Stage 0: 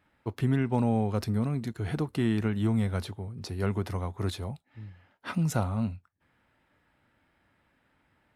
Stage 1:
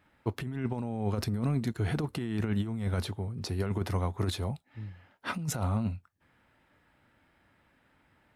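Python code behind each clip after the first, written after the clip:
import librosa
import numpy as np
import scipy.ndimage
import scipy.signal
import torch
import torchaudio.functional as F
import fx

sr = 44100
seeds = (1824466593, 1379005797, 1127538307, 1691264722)

y = fx.over_compress(x, sr, threshold_db=-29.0, ratio=-0.5)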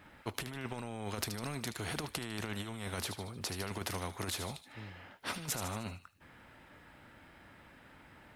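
y = fx.echo_wet_highpass(x, sr, ms=76, feedback_pct=45, hz=2700.0, wet_db=-13)
y = fx.spectral_comp(y, sr, ratio=2.0)
y = y * librosa.db_to_amplitude(2.5)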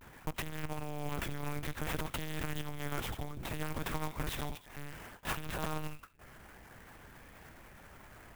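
y = fx.lpc_monotone(x, sr, seeds[0], pitch_hz=150.0, order=8)
y = fx.vibrato(y, sr, rate_hz=0.58, depth_cents=63.0)
y = fx.clock_jitter(y, sr, seeds[1], jitter_ms=0.042)
y = y * librosa.db_to_amplitude(3.5)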